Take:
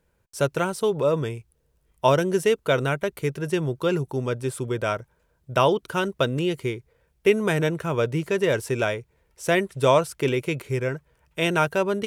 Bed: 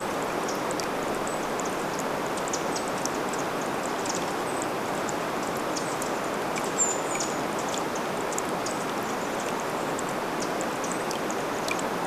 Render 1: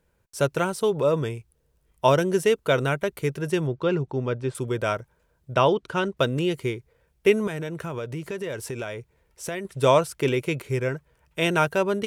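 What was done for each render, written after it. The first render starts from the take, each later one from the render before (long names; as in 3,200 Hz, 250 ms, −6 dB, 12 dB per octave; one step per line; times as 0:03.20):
0:03.67–0:04.55: high-frequency loss of the air 150 metres
0:05.54–0:06.17: high-frequency loss of the air 74 metres
0:07.47–0:09.65: downward compressor 4 to 1, threshold −29 dBFS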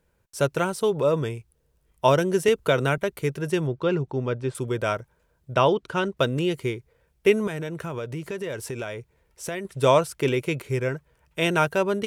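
0:02.48–0:02.98: multiband upward and downward compressor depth 70%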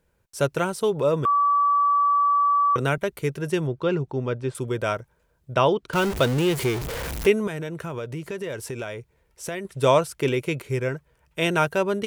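0:01.25–0:02.76: beep over 1,150 Hz −16.5 dBFS
0:05.93–0:07.27: converter with a step at zero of −24.5 dBFS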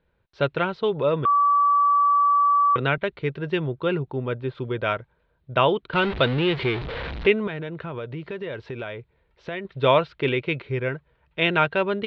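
elliptic low-pass filter 4,000 Hz, stop band 60 dB
dynamic equaliser 2,500 Hz, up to +5 dB, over −36 dBFS, Q 0.9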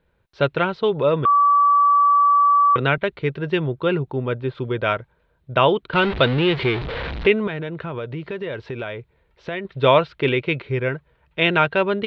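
level +3.5 dB
brickwall limiter −3 dBFS, peak gain reduction 2 dB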